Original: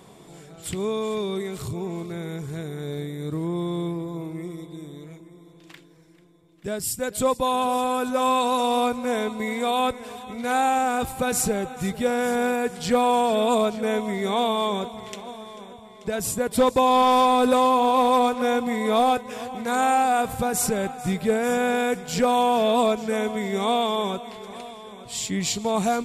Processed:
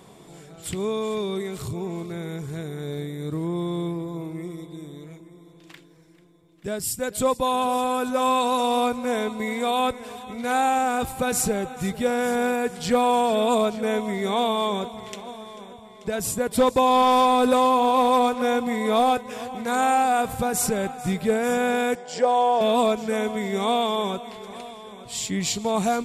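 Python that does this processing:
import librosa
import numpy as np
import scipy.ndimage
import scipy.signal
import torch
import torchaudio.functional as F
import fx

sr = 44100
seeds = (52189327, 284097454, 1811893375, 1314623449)

y = fx.cabinet(x, sr, low_hz=420.0, low_slope=12, high_hz=7300.0, hz=(560.0, 820.0, 1300.0, 2500.0, 3900.0, 6300.0), db=(5, 3, -8, -9, -8, -6), at=(21.95, 22.61))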